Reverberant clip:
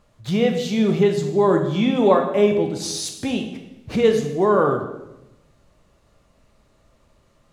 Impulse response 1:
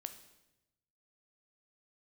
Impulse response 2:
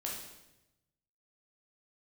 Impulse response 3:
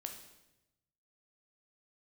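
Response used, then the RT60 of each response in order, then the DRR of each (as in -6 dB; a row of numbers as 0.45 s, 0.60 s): 3; 0.95 s, 0.95 s, 0.95 s; 8.0 dB, -3.0 dB, 3.5 dB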